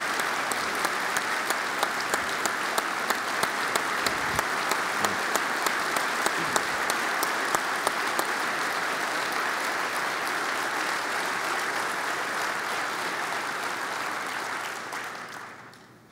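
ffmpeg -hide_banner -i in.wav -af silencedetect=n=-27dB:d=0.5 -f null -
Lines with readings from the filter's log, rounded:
silence_start: 15.37
silence_end: 16.12 | silence_duration: 0.75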